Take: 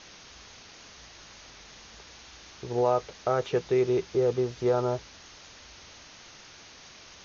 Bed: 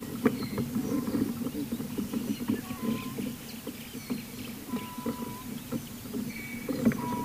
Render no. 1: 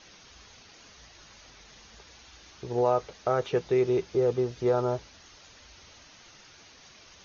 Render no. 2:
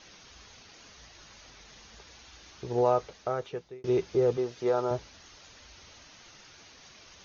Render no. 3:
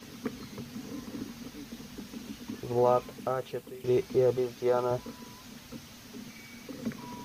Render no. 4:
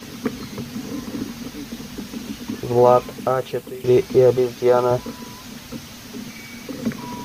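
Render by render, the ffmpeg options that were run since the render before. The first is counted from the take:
-af "afftdn=nr=6:nf=-50"
-filter_complex "[0:a]asettb=1/sr,asplit=3[s0][s1][s2];[s0]atrim=end=4.374[s3];[s1]atrim=start=4.37:end=4.91,asetpts=PTS-STARTPTS,afade=t=in:d=0.004:c=qsin,afade=t=out:st=0.536:d=0.004:c=qsin,highpass=f=340:p=1[s4];[s2]atrim=start=4.906[s5];[s3][s4]acrossfade=d=0.004:c1=hsin:c2=qsin[s6];[s6][s5]acrossfade=d=0.004:c1=qsin:c2=hsin,asplit=2[s7][s8];[s7]atrim=end=3.84,asetpts=PTS-STARTPTS,afade=t=out:st=2.92:d=0.92[s9];[s8]atrim=start=3.84,asetpts=PTS-STARTPTS,afade=t=in:d=0.004:c=hsin[s10];[s9][s10]concat=n=2:v=0:a=1"
-filter_complex "[1:a]volume=0.299[s0];[0:a][s0]amix=inputs=2:normalize=0"
-af "volume=3.55"

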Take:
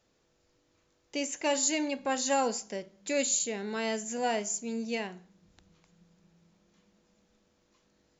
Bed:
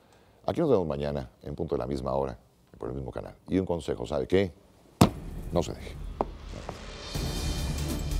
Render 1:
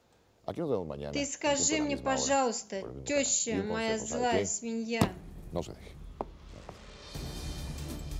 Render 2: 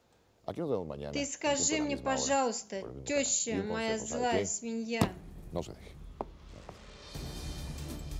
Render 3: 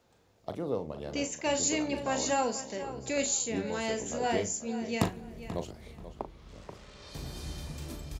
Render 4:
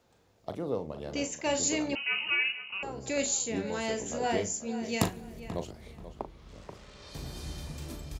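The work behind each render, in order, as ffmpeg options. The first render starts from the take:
-filter_complex "[1:a]volume=0.398[s0];[0:a][s0]amix=inputs=2:normalize=0"
-af "volume=0.841"
-filter_complex "[0:a]asplit=2[s0][s1];[s1]adelay=39,volume=0.335[s2];[s0][s2]amix=inputs=2:normalize=0,asplit=2[s3][s4];[s4]adelay=485,lowpass=f=3800:p=1,volume=0.237,asplit=2[s5][s6];[s6]adelay=485,lowpass=f=3800:p=1,volume=0.26,asplit=2[s7][s8];[s8]adelay=485,lowpass=f=3800:p=1,volume=0.26[s9];[s3][s5][s7][s9]amix=inputs=4:normalize=0"
-filter_complex "[0:a]asettb=1/sr,asplit=3[s0][s1][s2];[s0]atrim=end=1.954[s3];[s1]atrim=start=1.95:end=2.83,asetpts=PTS-STARTPTS,afade=t=in:d=0.004:c=qsin,afade=t=out:st=0.876:d=0.004:c=qsin,lowpass=f=2600:t=q:w=0.5098,lowpass=f=2600:t=q:w=0.6013,lowpass=f=2600:t=q:w=0.9,lowpass=f=2600:t=q:w=2.563,afreqshift=-3100[s4];[s2]atrim=start=2.826[s5];[s3][s4]acrossfade=d=0.004:c1=hsin:c2=qsin[s6];[s6][s5]acrossfade=d=0.004:c1=qsin:c2=hsin,asettb=1/sr,asplit=3[s7][s8][s9];[s7]atrim=end=4.834[s10];[s8]atrim=start=4.83:end=5.4,asetpts=PTS-STARTPTS,afade=t=in:d=0.004:c=qsin,afade=t=out:st=0.566:d=0.004:c=qsin,highshelf=f=5100:g=9[s11];[s9]atrim=start=5.396[s12];[s10][s11]acrossfade=d=0.004:c1=hsin:c2=qsin[s13];[s13][s12]acrossfade=d=0.004:c1=qsin:c2=hsin"

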